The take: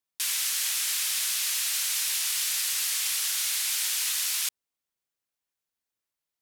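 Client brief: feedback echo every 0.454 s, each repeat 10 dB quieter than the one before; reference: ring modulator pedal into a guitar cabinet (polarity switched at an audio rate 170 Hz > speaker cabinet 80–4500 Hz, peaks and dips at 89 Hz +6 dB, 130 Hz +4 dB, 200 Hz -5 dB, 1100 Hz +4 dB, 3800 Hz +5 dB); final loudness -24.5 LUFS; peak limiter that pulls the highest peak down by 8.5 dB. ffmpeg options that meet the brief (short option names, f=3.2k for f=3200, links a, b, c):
-af "alimiter=limit=-23dB:level=0:latency=1,aecho=1:1:454|908|1362|1816:0.316|0.101|0.0324|0.0104,aeval=exprs='val(0)*sgn(sin(2*PI*170*n/s))':c=same,highpass=80,equalizer=f=89:t=q:w=4:g=6,equalizer=f=130:t=q:w=4:g=4,equalizer=f=200:t=q:w=4:g=-5,equalizer=f=1.1k:t=q:w=4:g=4,equalizer=f=3.8k:t=q:w=4:g=5,lowpass=f=4.5k:w=0.5412,lowpass=f=4.5k:w=1.3066,volume=10dB"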